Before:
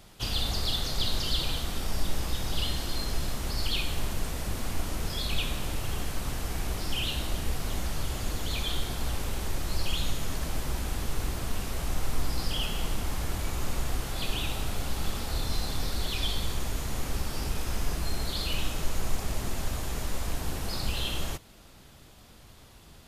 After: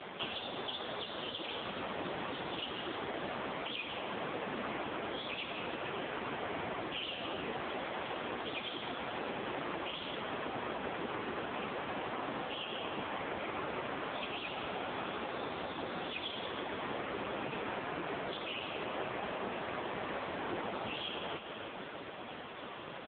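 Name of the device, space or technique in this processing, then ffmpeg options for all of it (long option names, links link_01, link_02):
voicemail: -filter_complex "[0:a]asplit=3[link_01][link_02][link_03];[link_01]afade=type=out:start_time=7.58:duration=0.02[link_04];[link_02]highpass=180,afade=type=in:start_time=7.58:duration=0.02,afade=type=out:start_time=8.43:duration=0.02[link_05];[link_03]afade=type=in:start_time=8.43:duration=0.02[link_06];[link_04][link_05][link_06]amix=inputs=3:normalize=0,highpass=310,lowpass=3000,equalizer=frequency=9500:width=0.77:gain=-4.5,aecho=1:1:163|326|489|652:0.237|0.104|0.0459|0.0202,acompressor=threshold=-50dB:ratio=10,volume=18dB" -ar 8000 -c:a libopencore_amrnb -b:a 5900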